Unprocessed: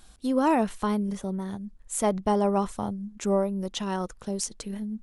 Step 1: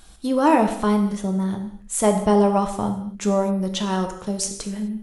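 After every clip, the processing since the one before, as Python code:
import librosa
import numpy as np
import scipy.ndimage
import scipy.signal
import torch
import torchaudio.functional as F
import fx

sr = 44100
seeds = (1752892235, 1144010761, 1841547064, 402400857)

y = fx.rev_gated(x, sr, seeds[0], gate_ms=280, shape='falling', drr_db=4.5)
y = F.gain(torch.from_numpy(y), 5.0).numpy()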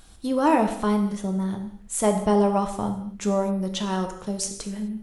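y = fx.dmg_noise_colour(x, sr, seeds[1], colour='brown', level_db=-52.0)
y = F.gain(torch.from_numpy(y), -3.0).numpy()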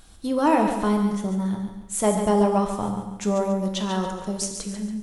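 y = fx.echo_feedback(x, sr, ms=141, feedback_pct=39, wet_db=-8)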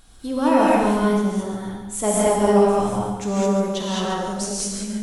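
y = fx.rev_gated(x, sr, seeds[2], gate_ms=240, shape='rising', drr_db=-5.5)
y = F.gain(torch.from_numpy(y), -2.0).numpy()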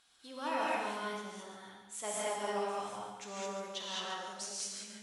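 y = fx.bandpass_q(x, sr, hz=3000.0, q=0.61)
y = F.gain(torch.from_numpy(y), -8.5).numpy()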